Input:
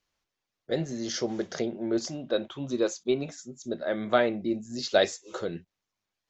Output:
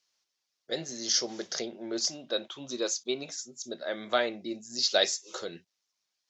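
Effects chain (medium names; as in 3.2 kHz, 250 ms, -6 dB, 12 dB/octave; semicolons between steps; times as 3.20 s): high-pass 440 Hz 6 dB/octave; peaking EQ 5.3 kHz +12.5 dB 1.3 oct; trim -3 dB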